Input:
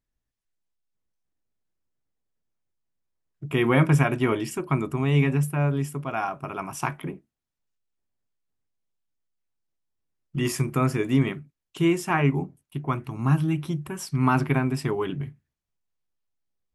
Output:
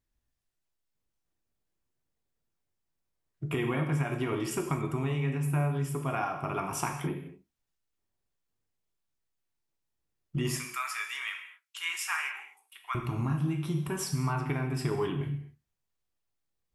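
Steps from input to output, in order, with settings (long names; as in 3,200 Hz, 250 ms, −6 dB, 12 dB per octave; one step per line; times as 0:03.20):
0:10.58–0:12.95: high-pass filter 1,300 Hz 24 dB per octave
downward compressor 12 to 1, threshold −28 dBFS, peak gain reduction 14 dB
reverb whose tail is shaped and stops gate 280 ms falling, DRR 3 dB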